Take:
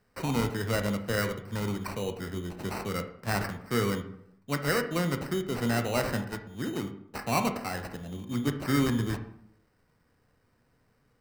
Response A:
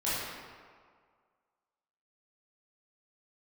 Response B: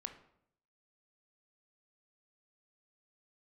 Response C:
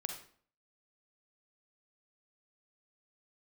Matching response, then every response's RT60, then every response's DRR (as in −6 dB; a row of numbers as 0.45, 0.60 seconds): B; 1.9, 0.70, 0.50 seconds; −11.5, 6.5, 4.0 decibels